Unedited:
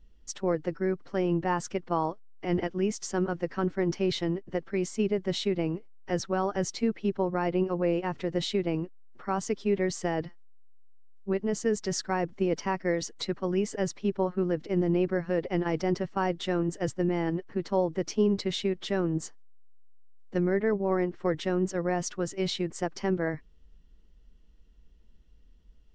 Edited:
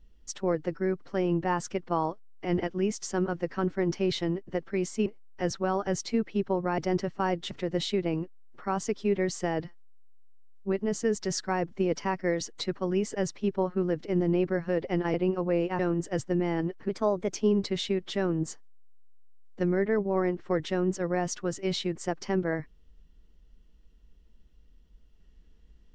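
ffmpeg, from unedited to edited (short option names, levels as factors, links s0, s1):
-filter_complex "[0:a]asplit=8[s0][s1][s2][s3][s4][s5][s6][s7];[s0]atrim=end=5.062[s8];[s1]atrim=start=5.748:end=7.472[s9];[s2]atrim=start=15.748:end=16.482[s10];[s3]atrim=start=8.118:end=15.752[s11];[s4]atrim=start=7.468:end=8.122[s12];[s5]atrim=start=16.478:end=17.584[s13];[s6]atrim=start=17.58:end=18.1,asetpts=PTS-STARTPTS,asetrate=49392,aresample=44100[s14];[s7]atrim=start=18.096[s15];[s8][s9]acrossfade=d=0.004:c1=hsin:c2=hsin[s16];[s16][s10]acrossfade=d=0.004:c1=hsin:c2=hsin[s17];[s17][s11]acrossfade=d=0.004:c1=hsin:c2=hsin[s18];[s18][s12]acrossfade=d=0.004:c1=hsin:c2=hsin[s19];[s19][s13]acrossfade=d=0.004:c1=hsin:c2=hsin[s20];[s20][s14]acrossfade=d=0.004:c1=hsin:c2=hsin[s21];[s21][s15]acrossfade=d=0.004:c1=hsin:c2=hsin"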